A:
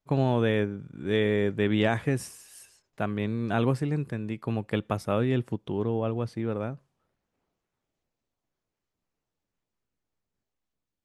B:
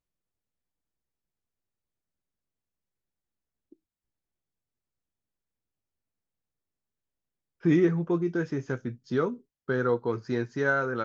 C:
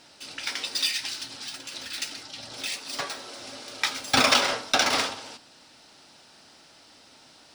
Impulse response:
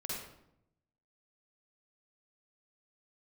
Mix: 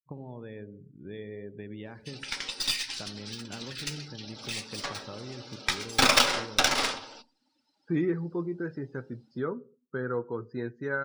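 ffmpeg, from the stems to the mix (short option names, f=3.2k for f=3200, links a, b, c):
-filter_complex "[0:a]acompressor=threshold=-28dB:ratio=6,volume=-11dB,asplit=2[a][b];[b]volume=-11dB[c];[1:a]adelay=250,volume=-6dB,asplit=2[d][e];[e]volume=-22dB[f];[2:a]aeval=exprs='0.447*(cos(1*acos(clip(val(0)/0.447,-1,1)))-cos(1*PI/2))+0.0794*(cos(3*acos(clip(val(0)/0.447,-1,1)))-cos(3*PI/2))+0.02*(cos(6*acos(clip(val(0)/0.447,-1,1)))-cos(6*PI/2))':c=same,adelay=1850,volume=2dB,asplit=2[g][h];[h]volume=-17.5dB[i];[3:a]atrim=start_sample=2205[j];[c][f][i]amix=inputs=3:normalize=0[k];[k][j]afir=irnorm=-1:irlink=0[l];[a][d][g][l]amix=inputs=4:normalize=0,bandreject=f=680:w=12,afftdn=nr=24:nf=-50"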